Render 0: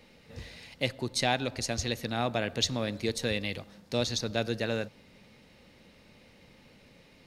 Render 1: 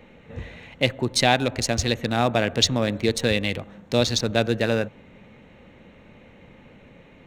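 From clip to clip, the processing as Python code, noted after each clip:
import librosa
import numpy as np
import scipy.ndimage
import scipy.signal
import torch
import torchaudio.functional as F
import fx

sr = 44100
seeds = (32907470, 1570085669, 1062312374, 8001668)

y = fx.wiener(x, sr, points=9)
y = y * librosa.db_to_amplitude(9.0)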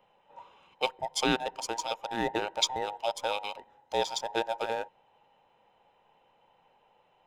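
y = fx.band_invert(x, sr, width_hz=1000)
y = fx.upward_expand(y, sr, threshold_db=-35.0, expansion=1.5)
y = y * librosa.db_to_amplitude(-7.0)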